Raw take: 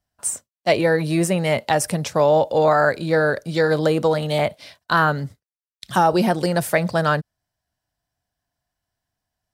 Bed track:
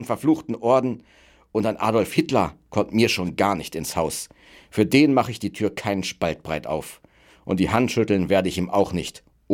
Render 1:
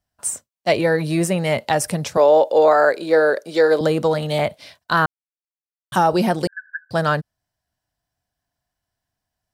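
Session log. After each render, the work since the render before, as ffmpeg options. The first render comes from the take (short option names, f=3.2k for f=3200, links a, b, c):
-filter_complex "[0:a]asettb=1/sr,asplit=3[a][b][c];[a]atrim=end=2.174[d];[b]atrim=start=2.17:end=3.81,asetpts=PTS-STARTPTS,afade=t=in:d=0.004:c=qsin,afade=t=out:st=1.636:d=0.004:c=qsin,highpass=f=390:t=q:w=1.6[e];[c]atrim=start=3.806[f];[d][e]acrossfade=d=0.004:c1=hsin:c2=qsin[g];[g][f]acrossfade=d=0.004:c1=qsin:c2=hsin,asettb=1/sr,asplit=3[h][i][j];[h]atrim=end=6.474[k];[i]atrim=start=6.47:end=6.91,asetpts=PTS-STARTPTS,afade=t=in:d=0.004:c=qsin,afade=t=out:st=0.436:d=0.004:c=qsin,asuperpass=centerf=1600:order=12:qfactor=6.7[l];[j]atrim=start=6.906[m];[k][l]acrossfade=d=0.004:c1=hsin:c2=qsin[n];[n][m]acrossfade=d=0.004:c1=qsin:c2=hsin,asplit=3[o][p][q];[o]atrim=end=5.06,asetpts=PTS-STARTPTS,afade=t=out:st=5.056:d=0.004:c=hsin[r];[p]atrim=start=5.06:end=5.92,asetpts=PTS-STARTPTS,volume=0[s];[q]atrim=start=5.92,asetpts=PTS-STARTPTS,afade=t=in:d=0.004:c=hsin[t];[r][s][t]concat=n=3:v=0:a=1"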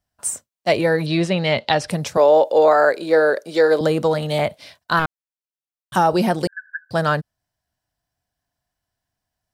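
-filter_complex "[0:a]asettb=1/sr,asplit=3[a][b][c];[a]atrim=end=1.064[d];[b]atrim=start=1.06:end=1.9,asetpts=PTS-STARTPTS,afade=t=in:d=0.004:c=qsin,afade=t=out:st=0.836:d=0.004:c=qsin,lowpass=f=3.9k:t=q:w=2.6[e];[c]atrim=start=1.896[f];[d][e]acrossfade=d=0.004:c1=hsin:c2=qsin[g];[g][f]acrossfade=d=0.004:c1=qsin:c2=hsin,asettb=1/sr,asplit=3[h][i][j];[h]atrim=end=4.994[k];[i]atrim=start=4.99:end=5.95,asetpts=PTS-STARTPTS,afade=t=in:d=0.004:c=qsin,afade=t=out:st=0.956:d=0.004:c=qsin,aeval=exprs='(tanh(3.98*val(0)+0.7)-tanh(0.7))/3.98':c=same[l];[j]atrim=start=5.946[m];[k][l]acrossfade=d=0.004:c1=hsin:c2=qsin[n];[n][m]acrossfade=d=0.004:c1=qsin:c2=hsin"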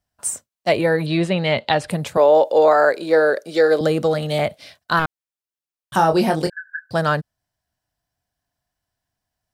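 -filter_complex "[0:a]asettb=1/sr,asplit=3[a][b][c];[a]atrim=end=0.694[d];[b]atrim=start=0.69:end=2.35,asetpts=PTS-STARTPTS,afade=t=in:d=0.004:c=qsin,afade=t=out:st=1.656:d=0.004:c=qsin,equalizer=f=5.6k:w=3.1:g=-10.5[e];[c]atrim=start=2.346[f];[d][e]acrossfade=d=0.004:c1=hsin:c2=qsin[g];[g][f]acrossfade=d=0.004:c1=qsin:c2=hsin,asettb=1/sr,asplit=3[h][i][j];[h]atrim=end=3.254[k];[i]atrim=start=3.25:end=4.91,asetpts=PTS-STARTPTS,afade=t=in:d=0.004:c=qsin,afade=t=out:st=1.656:d=0.004:c=qsin,bandreject=f=960:w=6.2[l];[j]atrim=start=4.906[m];[k][l]acrossfade=d=0.004:c1=hsin:c2=qsin[n];[n][m]acrossfade=d=0.004:c1=qsin:c2=hsin,asettb=1/sr,asplit=3[o][p][q];[o]atrim=end=5.964[r];[p]atrim=start=5.96:end=6.86,asetpts=PTS-STARTPTS,afade=t=in:d=0.004:c=qsin,afade=t=out:st=0.896:d=0.004:c=qsin,asplit=2[s][t];[t]adelay=25,volume=-6dB[u];[s][u]amix=inputs=2:normalize=0,atrim=end_sample=39690[v];[q]atrim=start=6.856[w];[r][v]acrossfade=d=0.004:c1=hsin:c2=qsin[x];[x][w]acrossfade=d=0.004:c1=qsin:c2=hsin"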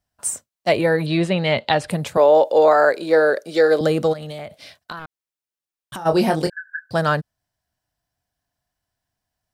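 -filter_complex "[0:a]asplit=3[a][b][c];[a]afade=t=out:st=4.12:d=0.02[d];[b]acompressor=threshold=-28dB:ratio=12:attack=3.2:release=140:knee=1:detection=peak,afade=t=in:st=4.12:d=0.02,afade=t=out:st=6.05:d=0.02[e];[c]afade=t=in:st=6.05:d=0.02[f];[d][e][f]amix=inputs=3:normalize=0"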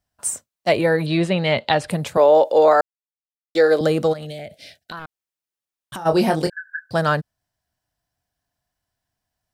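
-filter_complex "[0:a]asettb=1/sr,asplit=3[a][b][c];[a]atrim=end=4.254[d];[b]atrim=start=4.25:end=4.92,asetpts=PTS-STARTPTS,afade=t=in:d=0.004:c=qsin,afade=t=out:st=0.666:d=0.004:c=qsin,asuperstop=centerf=1100:order=4:qfactor=1.2[e];[c]atrim=start=4.916[f];[d][e]acrossfade=d=0.004:c1=hsin:c2=qsin[g];[g][f]acrossfade=d=0.004:c1=qsin:c2=hsin,asplit=3[h][i][j];[h]atrim=end=2.81,asetpts=PTS-STARTPTS,afade=t=out:st=2.806:d=0.004:c=hsin[k];[i]atrim=start=2.81:end=3.55,asetpts=PTS-STARTPTS,volume=0[l];[j]atrim=start=3.55,asetpts=PTS-STARTPTS,afade=t=in:d=0.004:c=hsin[m];[k][l][m]concat=n=3:v=0:a=1"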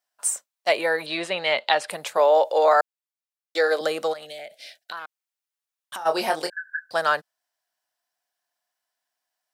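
-af "highpass=670"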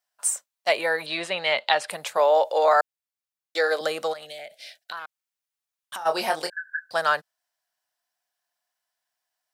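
-af "equalizer=f=320:w=0.99:g=-4.5"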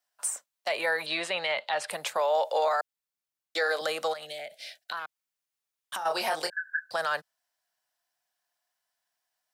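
-filter_complex "[0:a]acrossover=split=180|490|2300[a][b][c][d];[a]acompressor=threshold=-59dB:ratio=4[e];[b]acompressor=threshold=-42dB:ratio=4[f];[c]acompressor=threshold=-20dB:ratio=4[g];[d]acompressor=threshold=-29dB:ratio=4[h];[e][f][g][h]amix=inputs=4:normalize=0,alimiter=limit=-18.5dB:level=0:latency=1:release=18"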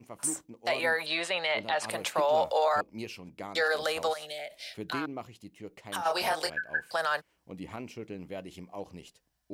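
-filter_complex "[1:a]volume=-21dB[a];[0:a][a]amix=inputs=2:normalize=0"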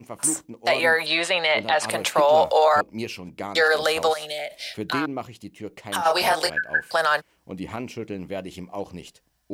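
-af "volume=8.5dB"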